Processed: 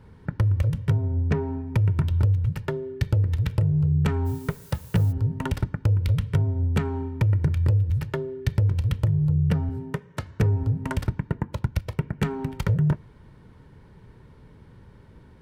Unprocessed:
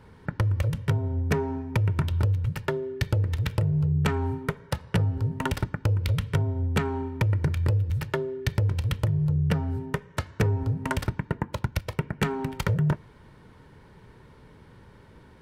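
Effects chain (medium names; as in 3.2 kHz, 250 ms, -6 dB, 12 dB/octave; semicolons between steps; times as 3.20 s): 9.69–10.22 s: high-pass 120 Hz; bass shelf 300 Hz +8 dB; 1.05–1.67 s: Bessel low-pass 4.1 kHz, order 2; 4.25–5.11 s: added noise blue -47 dBFS; trim -4 dB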